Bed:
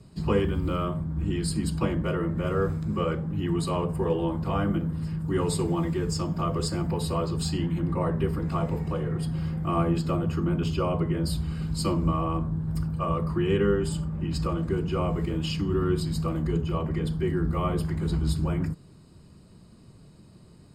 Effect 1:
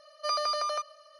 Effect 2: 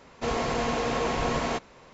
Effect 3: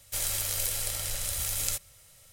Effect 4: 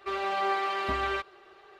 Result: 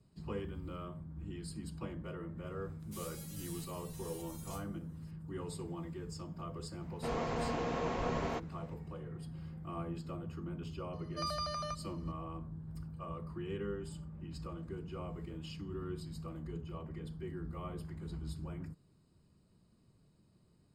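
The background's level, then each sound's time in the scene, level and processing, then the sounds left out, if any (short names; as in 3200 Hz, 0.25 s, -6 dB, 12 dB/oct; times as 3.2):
bed -16.5 dB
2.79 add 3 -7.5 dB + stepped resonator 3.5 Hz 140–460 Hz
6.81 add 2 -8 dB + high shelf 2300 Hz -8 dB
10.93 add 1 -9 dB
not used: 4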